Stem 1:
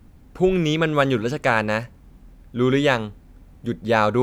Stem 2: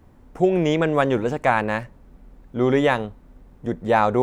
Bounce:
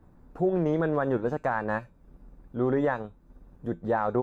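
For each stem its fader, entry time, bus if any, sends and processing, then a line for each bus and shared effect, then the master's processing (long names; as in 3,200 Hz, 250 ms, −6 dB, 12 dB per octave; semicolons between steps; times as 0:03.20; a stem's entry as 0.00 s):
−6.5 dB, 0.00 s, no send, comb filter 6.7 ms, depth 52%; downward compressor 2 to 1, threshold −33 dBFS, peak gain reduction 11.5 dB; tuned comb filter 170 Hz, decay 0.23 s, harmonics all, mix 90%
−4.0 dB, 0.00 s, no send, Butterworth low-pass 1,800 Hz 48 dB per octave; transient designer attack −3 dB, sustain −8 dB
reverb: not used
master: brickwall limiter −16.5 dBFS, peak gain reduction 6.5 dB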